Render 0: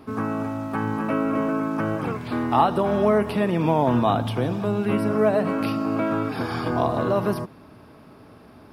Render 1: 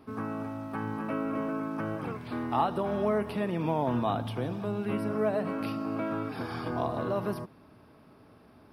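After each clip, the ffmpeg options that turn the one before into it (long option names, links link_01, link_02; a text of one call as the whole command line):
ffmpeg -i in.wav -af "equalizer=frequency=7000:width_type=o:width=0.28:gain=-6.5,volume=-8.5dB" out.wav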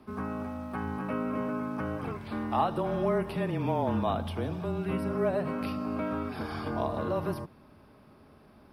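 ffmpeg -i in.wav -af "afreqshift=-24" out.wav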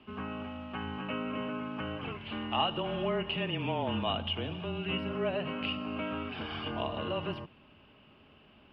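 ffmpeg -i in.wav -af "lowpass=frequency=2900:width_type=q:width=15,volume=-4.5dB" out.wav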